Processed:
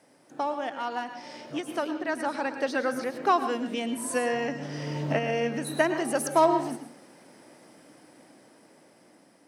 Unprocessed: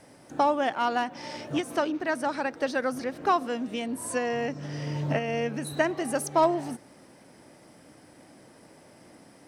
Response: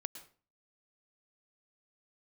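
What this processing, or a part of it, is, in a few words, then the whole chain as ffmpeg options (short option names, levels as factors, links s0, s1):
far laptop microphone: -filter_complex "[1:a]atrim=start_sample=2205[s0];[0:a][s0]afir=irnorm=-1:irlink=0,highpass=180,dynaudnorm=f=620:g=7:m=2.51,volume=0.631"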